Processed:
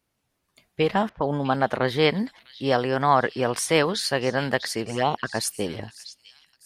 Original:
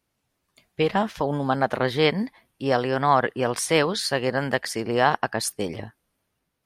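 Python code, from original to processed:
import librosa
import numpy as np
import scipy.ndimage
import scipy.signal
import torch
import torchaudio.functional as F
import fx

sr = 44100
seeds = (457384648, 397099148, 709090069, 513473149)

y = fx.env_lowpass(x, sr, base_hz=620.0, full_db=-18.5, at=(1.09, 1.83))
y = fx.echo_stepped(y, sr, ms=650, hz=3900.0, octaves=0.7, feedback_pct=70, wet_db=-9.0)
y = fx.env_flanger(y, sr, rest_ms=4.1, full_db=-15.5, at=(4.84, 5.34), fade=0.02)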